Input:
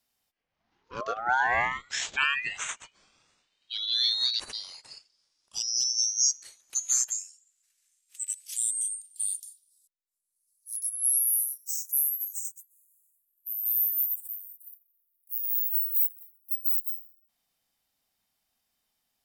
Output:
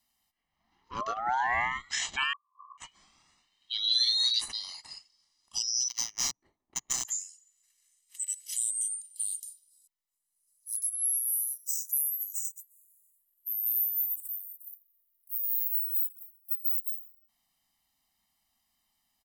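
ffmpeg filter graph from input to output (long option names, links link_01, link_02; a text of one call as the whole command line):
ffmpeg -i in.wav -filter_complex "[0:a]asettb=1/sr,asplit=3[link_01][link_02][link_03];[link_01]atrim=end=2.334[link_04];[link_02]atrim=start=2.33:end=2.78,asetpts=PTS-STARTPTS,afade=type=in:duration=0.004:curve=qsin,afade=type=out:start_time=0.446:duration=0.004:curve=qsin,acompressor=threshold=-34dB:ratio=6:attack=3.2:release=140:knee=1:detection=peak,asuperpass=centerf=1100:order=20:qfactor=5.8[link_05];[link_03]atrim=start=2.776[link_06];[link_04][link_05]acrossfade=duration=0.004:curve1=hsin:curve2=qsin[link_07];[link_07][link_06]acrossfade=duration=0.004:curve1=qsin:curve2=hsin,asettb=1/sr,asplit=3[link_08][link_09][link_10];[link_08]atrim=end=3.844[link_11];[link_09]atrim=start=3.84:end=4.48,asetpts=PTS-STARTPTS,afade=type=in:duration=0.004:curve=qsin,afade=type=out:start_time=0.636:duration=0.004:curve=qsin,aemphasis=mode=production:type=75fm,asplit=2[link_12][link_13];[link_13]adelay=17,volume=-6dB[link_14];[link_12][link_14]amix=inputs=2:normalize=0,atrim=end_sample=28224[link_15];[link_10]atrim=start=4.476[link_16];[link_11][link_15]acrossfade=duration=0.004:curve1=hsin:curve2=qsin[link_17];[link_17][link_16]acrossfade=duration=0.004:curve1=qsin:curve2=hsin,asettb=1/sr,asplit=3[link_18][link_19][link_20];[link_18]atrim=end=5.884[link_21];[link_19]atrim=start=5.88:end=7.05,asetpts=PTS-STARTPTS,afade=type=in:duration=0.004:curve=qsin,afade=type=out:start_time=1.166:duration=0.004:curve=qsin,equalizer=frequency=380:width=1:gain=7.5,adynamicsmooth=sensitivity=3.5:basefreq=550[link_22];[link_20]atrim=start=7.046[link_23];[link_21][link_22]acrossfade=duration=0.004:curve1=hsin:curve2=qsin[link_24];[link_24][link_23]acrossfade=duration=0.004:curve1=qsin:curve2=hsin,equalizer=frequency=120:width_type=o:width=0.24:gain=-11.5,aecho=1:1:1:0.69,acompressor=threshold=-29dB:ratio=2" out.wav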